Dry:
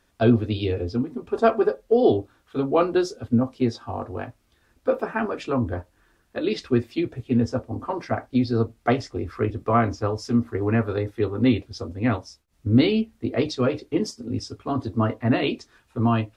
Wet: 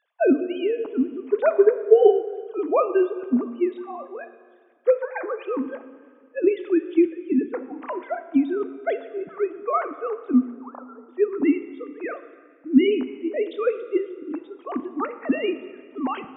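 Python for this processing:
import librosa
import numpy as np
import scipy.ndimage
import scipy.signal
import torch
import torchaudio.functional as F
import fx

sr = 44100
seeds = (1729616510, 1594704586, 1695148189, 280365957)

y = fx.sine_speech(x, sr)
y = fx.cheby1_bandpass(y, sr, low_hz=540.0, high_hz=1300.0, order=4, at=(10.5, 11.08), fade=0.02)
y = fx.rev_plate(y, sr, seeds[0], rt60_s=1.9, hf_ratio=0.95, predelay_ms=0, drr_db=11.0)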